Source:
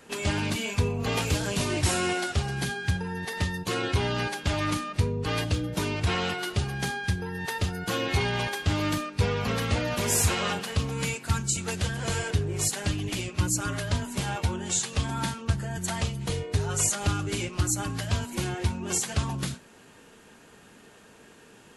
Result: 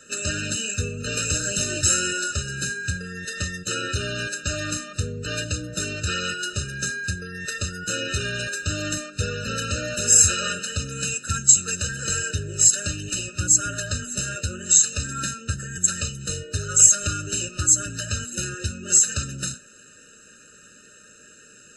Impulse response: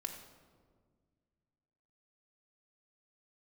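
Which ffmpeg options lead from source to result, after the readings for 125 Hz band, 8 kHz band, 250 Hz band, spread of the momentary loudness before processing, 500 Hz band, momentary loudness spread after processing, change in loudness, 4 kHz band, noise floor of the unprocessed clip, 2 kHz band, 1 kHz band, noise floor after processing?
-2.0 dB, +12.5 dB, -3.0 dB, 5 LU, -2.5 dB, 13 LU, +6.5 dB, +3.5 dB, -53 dBFS, +3.5 dB, -3.0 dB, -50 dBFS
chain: -af "lowpass=f=7300:t=q:w=6.1,lowshelf=f=580:t=q:w=1.5:g=-6,afftfilt=real='re*eq(mod(floor(b*sr/1024/610),2),0)':imag='im*eq(mod(floor(b*sr/1024/610),2),0)':win_size=1024:overlap=0.75,volume=1.58"

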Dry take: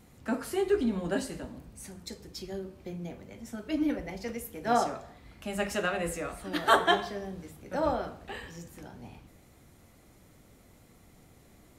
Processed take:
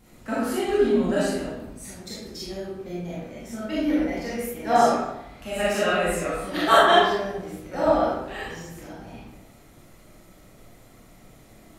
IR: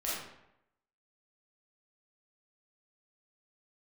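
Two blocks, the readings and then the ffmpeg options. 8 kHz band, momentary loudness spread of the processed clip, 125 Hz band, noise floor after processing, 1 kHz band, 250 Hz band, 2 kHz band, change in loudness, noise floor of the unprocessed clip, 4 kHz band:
+6.0 dB, 18 LU, +5.0 dB, -52 dBFS, +8.5 dB, +6.5 dB, +7.0 dB, +8.0 dB, -58 dBFS, +8.0 dB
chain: -filter_complex "[1:a]atrim=start_sample=2205[s0];[0:a][s0]afir=irnorm=-1:irlink=0,volume=1.41"

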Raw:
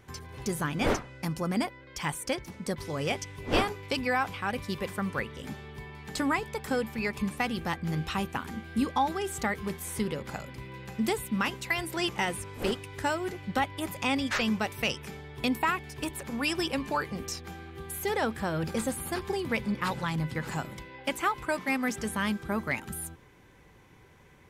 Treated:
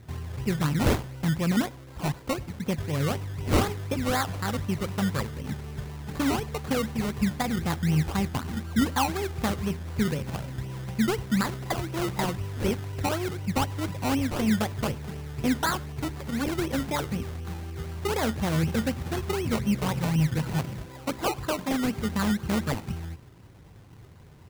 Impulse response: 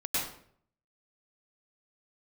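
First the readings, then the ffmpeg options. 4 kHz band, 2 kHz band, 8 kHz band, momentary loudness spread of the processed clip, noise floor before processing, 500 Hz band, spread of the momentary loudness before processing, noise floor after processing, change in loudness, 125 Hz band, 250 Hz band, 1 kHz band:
0.0 dB, -2.5 dB, +1.5 dB, 9 LU, -56 dBFS, +1.5 dB, 9 LU, -48 dBFS, +3.0 dB, +9.0 dB, +5.0 dB, 0.0 dB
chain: -filter_complex "[0:a]acrossover=split=3200[s0][s1];[s1]acompressor=threshold=0.002:ratio=4:attack=1:release=60[s2];[s0][s2]amix=inputs=2:normalize=0,equalizer=f=99:w=0.67:g=12,acrusher=samples=21:mix=1:aa=0.000001:lfo=1:lforange=12.6:lforate=4,asplit=2[s3][s4];[s4]adelay=99.13,volume=0.0562,highshelf=f=4000:g=-2.23[s5];[s3][s5]amix=inputs=2:normalize=0"

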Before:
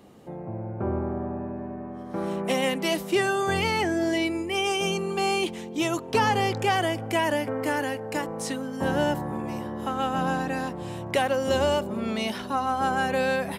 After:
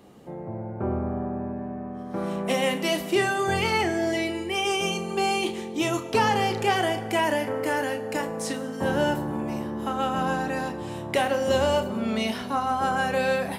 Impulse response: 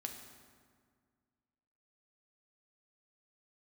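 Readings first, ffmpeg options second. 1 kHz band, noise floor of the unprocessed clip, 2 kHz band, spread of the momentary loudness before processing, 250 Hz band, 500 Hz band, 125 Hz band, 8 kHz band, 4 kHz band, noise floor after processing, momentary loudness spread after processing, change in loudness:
+1.0 dB, -37 dBFS, +0.5 dB, 9 LU, 0.0 dB, +0.5 dB, 0.0 dB, +0.5 dB, +0.5 dB, -36 dBFS, 9 LU, +0.5 dB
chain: -filter_complex "[0:a]asplit=2[s0][s1];[1:a]atrim=start_sample=2205,adelay=32[s2];[s1][s2]afir=irnorm=-1:irlink=0,volume=0.562[s3];[s0][s3]amix=inputs=2:normalize=0"

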